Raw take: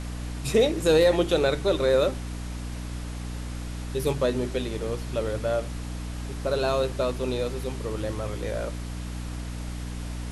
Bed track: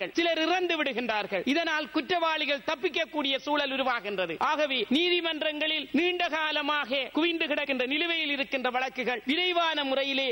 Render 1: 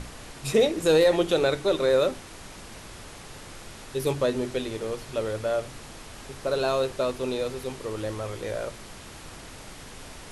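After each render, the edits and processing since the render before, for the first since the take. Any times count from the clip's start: hum notches 60/120/180/240/300 Hz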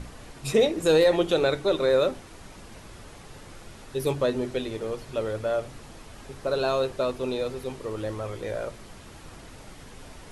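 noise reduction 6 dB, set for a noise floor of -44 dBFS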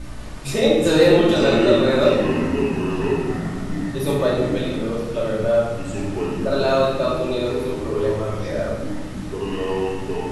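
simulated room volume 670 m³, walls mixed, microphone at 2.6 m; ever faster or slower copies 194 ms, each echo -6 st, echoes 3, each echo -6 dB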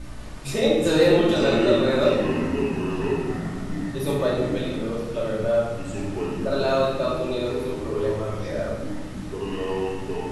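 trim -3.5 dB

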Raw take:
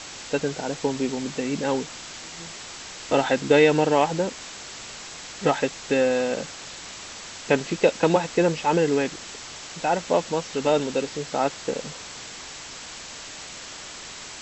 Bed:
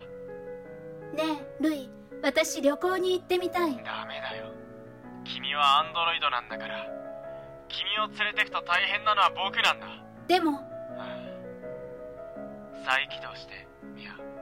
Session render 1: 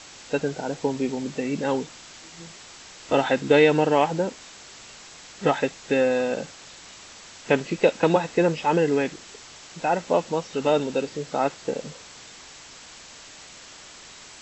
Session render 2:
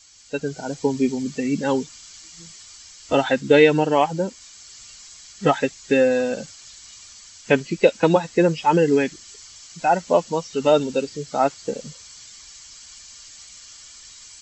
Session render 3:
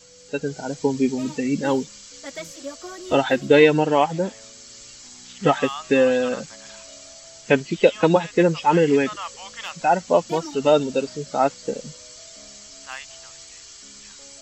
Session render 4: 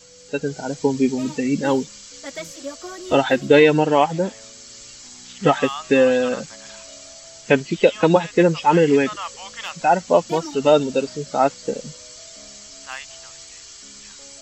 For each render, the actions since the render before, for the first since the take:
noise print and reduce 6 dB
expander on every frequency bin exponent 1.5; level rider gain up to 8 dB
add bed -10.5 dB
trim +2 dB; peak limiter -2 dBFS, peak gain reduction 2.5 dB

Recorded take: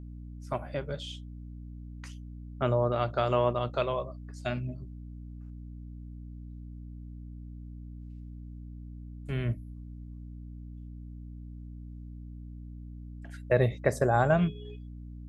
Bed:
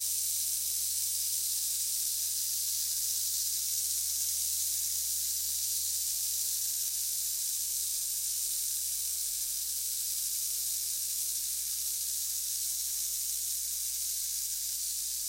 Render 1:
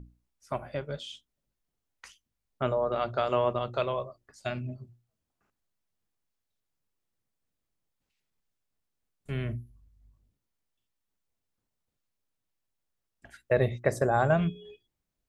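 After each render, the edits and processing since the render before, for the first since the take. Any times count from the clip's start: hum notches 60/120/180/240/300/360 Hz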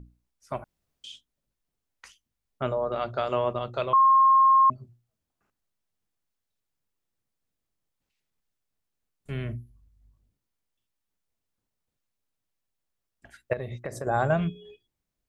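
0.64–1.04 s: room tone; 3.93–4.70 s: bleep 1.07 kHz -14.5 dBFS; 13.53–14.07 s: compression, threshold -30 dBFS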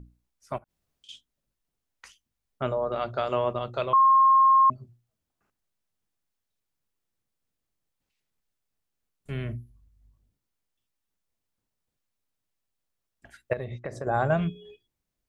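0.58–1.09 s: compression 16:1, threshold -54 dBFS; 13.64–14.32 s: distance through air 80 m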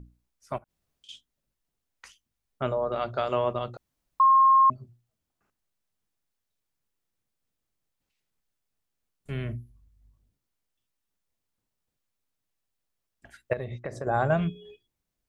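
3.77–4.20 s: room tone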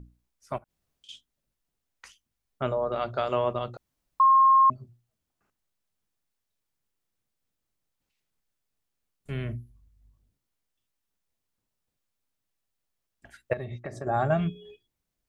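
13.53–14.46 s: comb of notches 500 Hz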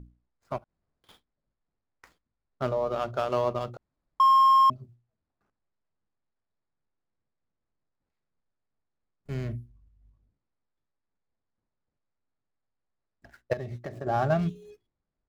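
median filter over 15 samples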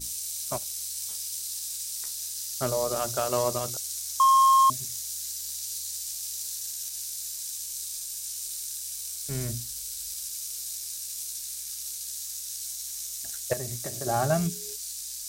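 add bed -2.5 dB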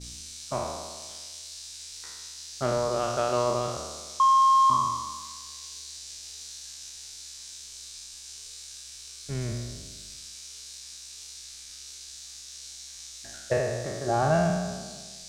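spectral sustain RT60 1.38 s; distance through air 120 m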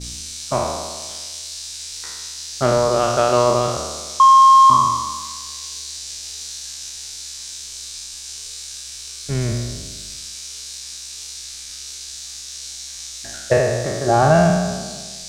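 trim +10 dB; peak limiter -2 dBFS, peak gain reduction 1 dB

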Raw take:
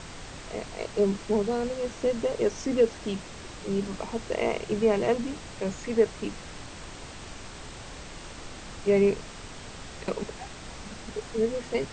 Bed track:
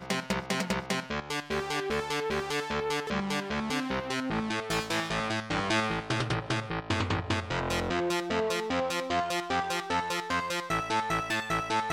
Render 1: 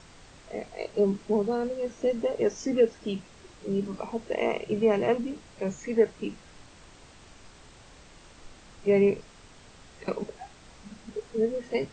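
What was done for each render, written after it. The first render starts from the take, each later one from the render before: noise print and reduce 10 dB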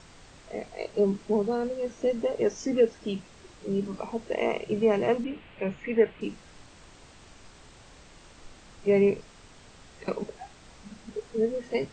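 5.24–6.21 s: resonant high shelf 4 kHz -13.5 dB, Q 3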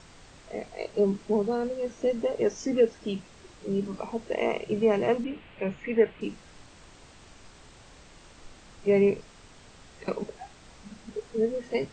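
no audible change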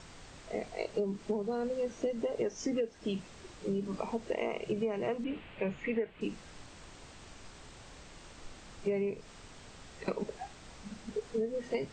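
compression 16:1, threshold -29 dBFS, peak gain reduction 14.5 dB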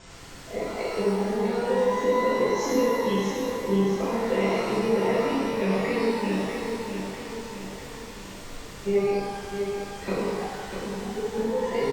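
feedback delay 646 ms, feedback 51%, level -6.5 dB; pitch-shifted reverb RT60 1.4 s, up +12 st, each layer -8 dB, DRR -7.5 dB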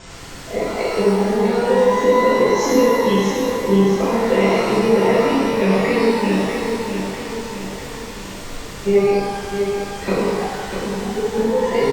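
trim +8.5 dB; peak limiter -3 dBFS, peak gain reduction 1 dB

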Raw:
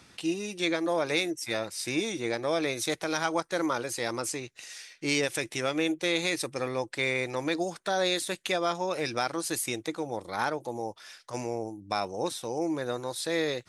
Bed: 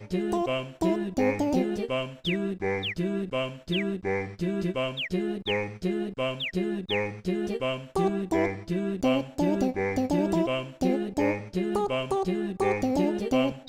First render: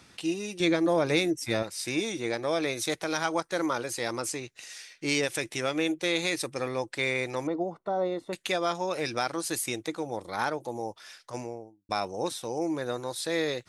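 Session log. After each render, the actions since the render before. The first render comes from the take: 0.60–1.63 s: bass shelf 310 Hz +11 dB; 7.47–8.33 s: Savitzky-Golay filter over 65 samples; 11.19–11.89 s: studio fade out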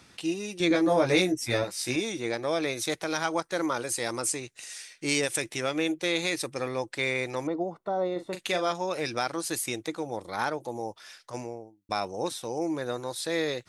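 0.69–1.96 s: doubling 16 ms -2 dB; 3.77–5.42 s: peaking EQ 8.8 kHz +8 dB 0.64 oct; 8.12–8.72 s: doubling 39 ms -8.5 dB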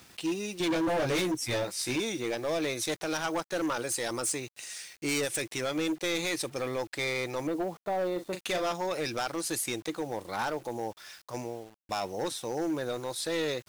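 hard clipper -26 dBFS, distortion -9 dB; bit crusher 9-bit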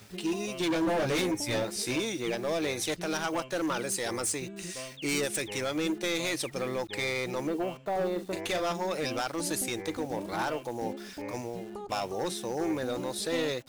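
add bed -14 dB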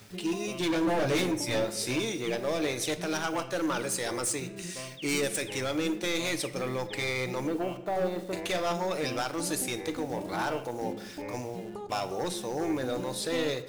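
simulated room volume 340 m³, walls mixed, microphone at 0.36 m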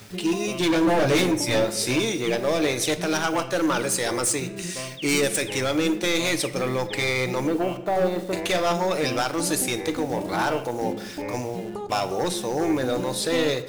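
trim +7 dB

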